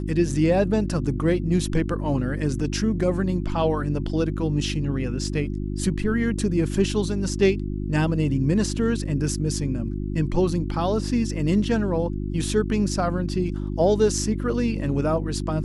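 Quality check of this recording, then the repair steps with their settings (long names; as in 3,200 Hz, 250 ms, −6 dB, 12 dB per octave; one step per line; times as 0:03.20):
mains hum 50 Hz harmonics 7 −28 dBFS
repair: hum removal 50 Hz, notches 7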